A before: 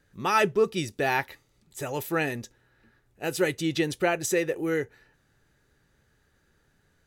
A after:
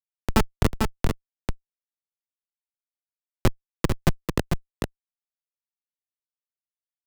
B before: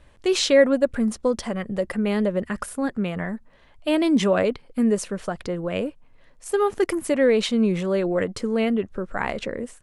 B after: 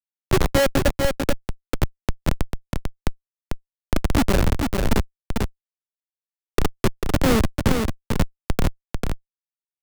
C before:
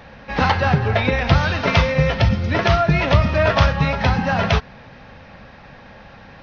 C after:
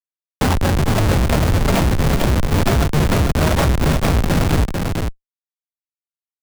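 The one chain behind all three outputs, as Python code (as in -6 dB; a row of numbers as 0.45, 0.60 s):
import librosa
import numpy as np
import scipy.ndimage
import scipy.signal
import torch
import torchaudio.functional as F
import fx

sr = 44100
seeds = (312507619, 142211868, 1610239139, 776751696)

p1 = fx.dmg_noise_band(x, sr, seeds[0], low_hz=190.0, high_hz=1300.0, level_db=-33.0)
p2 = fx.dispersion(p1, sr, late='lows', ms=57.0, hz=560.0)
p3 = fx.schmitt(p2, sr, flips_db=-14.0)
p4 = p3 + fx.echo_single(p3, sr, ms=445, db=-6.0, dry=0)
p5 = fx.band_squash(p4, sr, depth_pct=40)
y = librosa.util.normalize(p5) * 10.0 ** (-3 / 20.0)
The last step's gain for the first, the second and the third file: +13.5, +7.5, +3.0 dB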